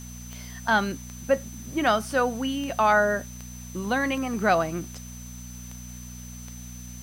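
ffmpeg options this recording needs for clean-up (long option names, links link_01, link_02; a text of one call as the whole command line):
ffmpeg -i in.wav -af "adeclick=threshold=4,bandreject=frequency=60.8:width_type=h:width=4,bandreject=frequency=121.6:width_type=h:width=4,bandreject=frequency=182.4:width_type=h:width=4,bandreject=frequency=243.2:width_type=h:width=4,bandreject=frequency=6100:width=30,afwtdn=0.0032" out.wav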